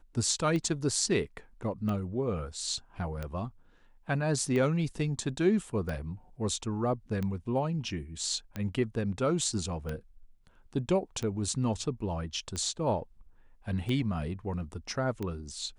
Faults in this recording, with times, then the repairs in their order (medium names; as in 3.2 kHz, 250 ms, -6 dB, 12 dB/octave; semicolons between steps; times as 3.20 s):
tick 45 rpm -22 dBFS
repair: de-click